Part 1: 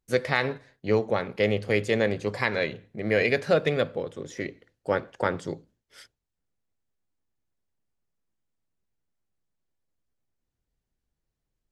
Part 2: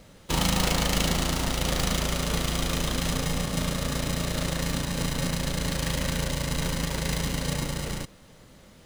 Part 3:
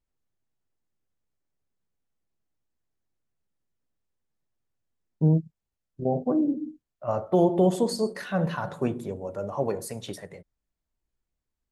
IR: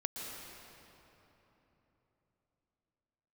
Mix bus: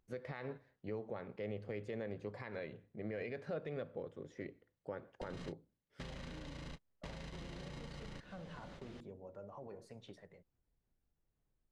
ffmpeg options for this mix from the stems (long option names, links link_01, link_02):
-filter_complex "[0:a]lowpass=frequency=1300:poles=1,acompressor=mode=upward:threshold=-59dB:ratio=2.5,volume=-11.5dB[link_01];[1:a]asoftclip=type=hard:threshold=-24.5dB,acompressor=threshold=-34dB:ratio=6,adelay=150,volume=0dB[link_02];[2:a]alimiter=limit=-21dB:level=0:latency=1:release=45,volume=-17dB,asplit=2[link_03][link_04];[link_04]apad=whole_len=397031[link_05];[link_02][link_05]sidechaingate=range=-58dB:threshold=-57dB:ratio=16:detection=peak[link_06];[link_06][link_03]amix=inputs=2:normalize=0,lowpass=4200,acompressor=threshold=-45dB:ratio=10,volume=0dB[link_07];[link_01][link_07]amix=inputs=2:normalize=0,alimiter=level_in=8.5dB:limit=-24dB:level=0:latency=1:release=135,volume=-8.5dB"